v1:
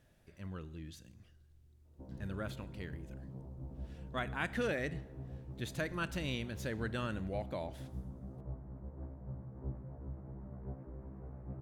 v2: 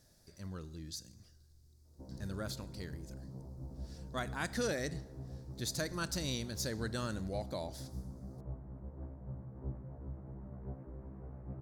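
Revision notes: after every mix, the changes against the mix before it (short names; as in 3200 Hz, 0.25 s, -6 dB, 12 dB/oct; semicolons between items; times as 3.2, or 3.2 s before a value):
speech: add resonant high shelf 3700 Hz +9 dB, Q 3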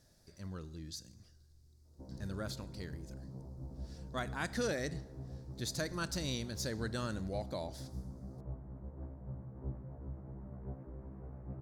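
master: add high shelf 8500 Hz -5.5 dB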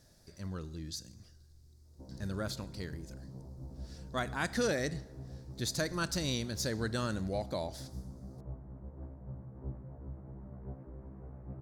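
speech +4.0 dB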